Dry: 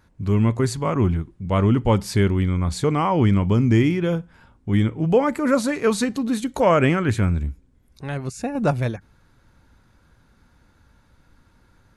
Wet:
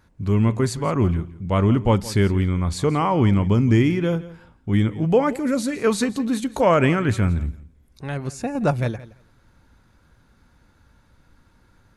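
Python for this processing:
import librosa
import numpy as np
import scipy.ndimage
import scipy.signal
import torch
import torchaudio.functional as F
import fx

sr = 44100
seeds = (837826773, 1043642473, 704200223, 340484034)

y = fx.peak_eq(x, sr, hz=980.0, db=-13.0, octaves=1.4, at=(5.33, 5.78))
y = fx.echo_feedback(y, sr, ms=170, feedback_pct=16, wet_db=-18)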